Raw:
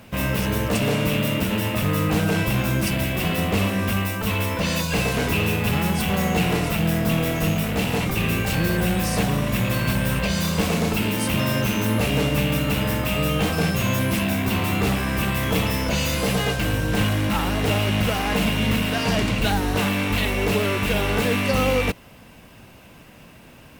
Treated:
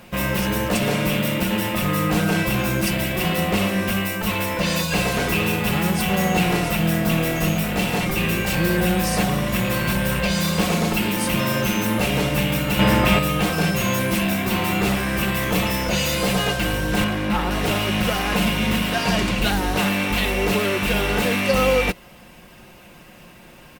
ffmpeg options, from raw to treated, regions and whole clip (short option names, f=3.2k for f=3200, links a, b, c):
-filter_complex "[0:a]asettb=1/sr,asplit=3[a][b][c];[a]atrim=end=12.794[d];[b]atrim=start=12.79:end=13.19,asetpts=PTS-STARTPTS,afade=t=in:d=0.004:c=qsin,afade=t=out:st=0.396:d=0.004:c=qsin,highshelf=f=6.6k:g=-10.5,acontrast=88[e];[c]atrim=start=13.186[f];[d][e]acrossfade=d=0.004:c1=hsin:c2=qsin[g];[g][f]acrossfade=d=0.004:c1=qsin:c2=hsin,asettb=1/sr,asplit=3[h][i][j];[h]atrim=end=17.044[k];[i]atrim=start=17.04:end=17.51,asetpts=PTS-STARTPTS,afade=t=in:d=0.004:c=qsin,afade=t=out:st=0.466:d=0.004:c=qsin,highshelf=f=4.4k:g=-10.5,asplit=2[l][m];[m]adelay=14,volume=-11dB[n];[l][n]amix=inputs=2:normalize=0,atrim=end_sample=20727[o];[j]atrim=start=17.506[p];[k][o]acrossfade=d=0.004:c1=hsin:c2=qsin[q];[q][p]acrossfade=d=0.004:c1=qsin:c2=hsin,equalizer=f=130:w=1:g=-4,aecho=1:1:5.6:0.46,volume=1.5dB"